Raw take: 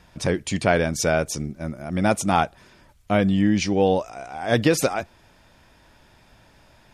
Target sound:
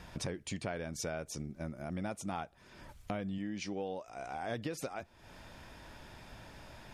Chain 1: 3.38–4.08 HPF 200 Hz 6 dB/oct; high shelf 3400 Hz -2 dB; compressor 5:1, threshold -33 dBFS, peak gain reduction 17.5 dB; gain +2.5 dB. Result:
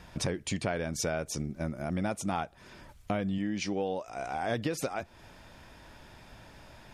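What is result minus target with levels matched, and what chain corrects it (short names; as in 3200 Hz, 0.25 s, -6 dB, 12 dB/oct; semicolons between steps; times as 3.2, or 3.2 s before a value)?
compressor: peak gain reduction -7 dB
3.38–4.08 HPF 200 Hz 6 dB/oct; high shelf 3400 Hz -2 dB; compressor 5:1, threshold -41.5 dBFS, peak gain reduction 24.5 dB; gain +2.5 dB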